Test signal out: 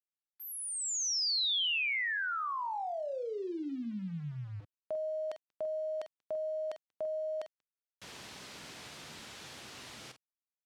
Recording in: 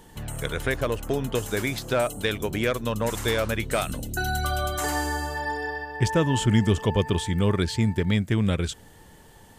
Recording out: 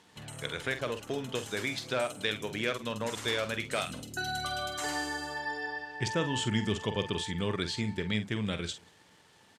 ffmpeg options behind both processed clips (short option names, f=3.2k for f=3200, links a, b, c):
-filter_complex "[0:a]asplit=2[a][b];[b]adelay=47,volume=-10dB[c];[a][c]amix=inputs=2:normalize=0,crystalizer=i=4.5:c=0,asplit=2[d][e];[e]adelay=186.6,volume=-26dB,highshelf=f=4k:g=-4.2[f];[d][f]amix=inputs=2:normalize=0,aeval=exprs='val(0)*gte(abs(val(0)),0.00841)':c=same,highpass=120,lowpass=4.1k,volume=-9dB"